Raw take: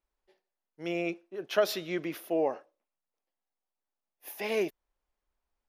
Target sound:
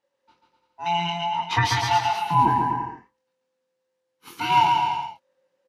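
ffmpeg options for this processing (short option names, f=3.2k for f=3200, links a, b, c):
-filter_complex "[0:a]afftfilt=real='real(if(lt(b,1008),b+24*(1-2*mod(floor(b/24),2)),b),0)':imag='imag(if(lt(b,1008),b+24*(1-2*mod(floor(b/24),2)),b),0)':win_size=2048:overlap=0.75,highpass=160,lowpass=6.5k,equalizer=f=970:t=o:w=0.31:g=2.5,asplit=2[a][b];[b]adelay=23,volume=-4.5dB[c];[a][c]amix=inputs=2:normalize=0,aecho=1:1:140|252|341.6|413.3|470.6:0.631|0.398|0.251|0.158|0.1,volume=7.5dB"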